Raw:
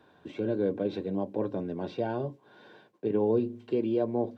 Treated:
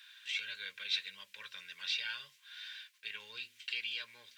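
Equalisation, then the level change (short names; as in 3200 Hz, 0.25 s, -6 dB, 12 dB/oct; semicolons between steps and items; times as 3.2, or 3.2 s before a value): inverse Chebyshev high-pass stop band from 800 Hz, stop band 50 dB; +16.5 dB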